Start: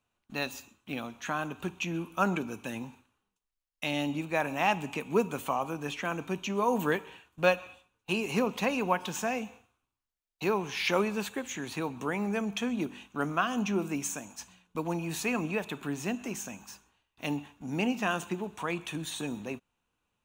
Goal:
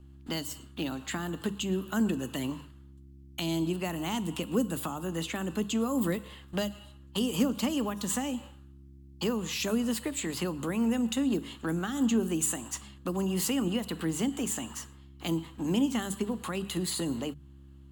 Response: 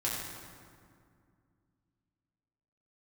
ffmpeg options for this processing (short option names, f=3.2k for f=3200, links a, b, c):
-filter_complex "[0:a]aeval=exprs='val(0)+0.00141*(sin(2*PI*60*n/s)+sin(2*PI*2*60*n/s)/2+sin(2*PI*3*60*n/s)/3+sin(2*PI*4*60*n/s)/4+sin(2*PI*5*60*n/s)/5)':c=same,acrossover=split=260|5200[a][b][c];[b]acompressor=threshold=-44dB:ratio=6[d];[a][d][c]amix=inputs=3:normalize=0,asetrate=49833,aresample=44100,bandreject=f=50:t=h:w=6,bandreject=f=100:t=h:w=6,bandreject=f=150:t=h:w=6,bandreject=f=200:t=h:w=6,volume=7.5dB"